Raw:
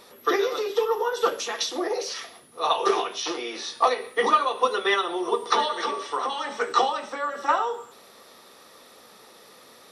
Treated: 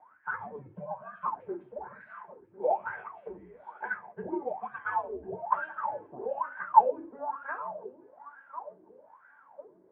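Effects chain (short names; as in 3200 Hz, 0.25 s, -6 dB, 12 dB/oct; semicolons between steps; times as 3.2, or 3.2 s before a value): thinning echo 1.049 s, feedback 43%, high-pass 220 Hz, level -15 dB; mistuned SSB -290 Hz 150–2400 Hz; wah 1.1 Hz 340–1600 Hz, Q 14; gain +7 dB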